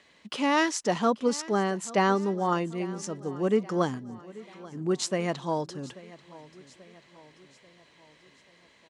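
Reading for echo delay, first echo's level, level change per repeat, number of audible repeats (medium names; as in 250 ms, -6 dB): 837 ms, -19.5 dB, -5.5 dB, 3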